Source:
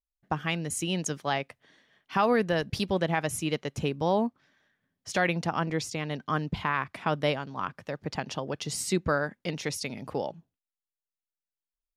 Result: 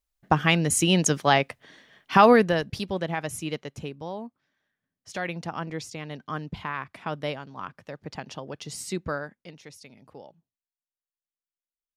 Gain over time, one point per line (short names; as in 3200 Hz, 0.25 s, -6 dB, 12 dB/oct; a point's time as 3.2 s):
2.28 s +9 dB
2.75 s -2 dB
3.55 s -2 dB
4.2 s -11 dB
5.5 s -4 dB
9.15 s -4 dB
9.57 s -14 dB